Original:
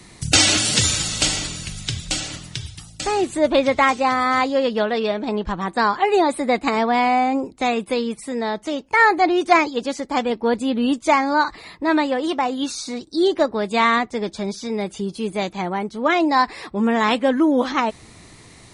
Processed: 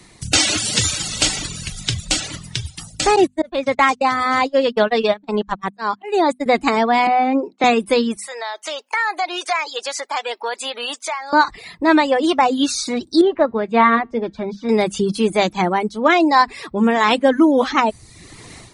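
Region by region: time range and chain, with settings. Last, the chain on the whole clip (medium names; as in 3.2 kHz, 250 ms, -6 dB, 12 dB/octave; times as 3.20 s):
3.16–6.46 s: gate -23 dBFS, range -36 dB + slow attack 355 ms
7.07–7.64 s: expander -47 dBFS + high-pass 230 Hz 24 dB/octave + distance through air 190 m
8.17–11.33 s: Bessel high-pass 880 Hz, order 4 + compression 3:1, threshold -31 dBFS
13.21–14.69 s: low-pass 2.1 kHz + feedback comb 230 Hz, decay 0.28 s, mix 50%
whole clip: hum notches 50/100/150/200/250 Hz; reverb removal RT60 0.64 s; level rider; trim -1 dB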